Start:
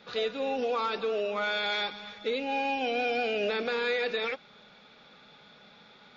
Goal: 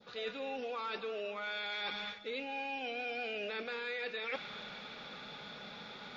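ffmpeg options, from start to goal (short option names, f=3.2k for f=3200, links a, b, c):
-af "adynamicequalizer=threshold=0.00708:dfrequency=2200:dqfactor=0.7:tfrequency=2200:tqfactor=0.7:attack=5:release=100:ratio=0.375:range=3:mode=boostabove:tftype=bell,areverse,acompressor=threshold=-44dB:ratio=10,areverse,volume=6.5dB"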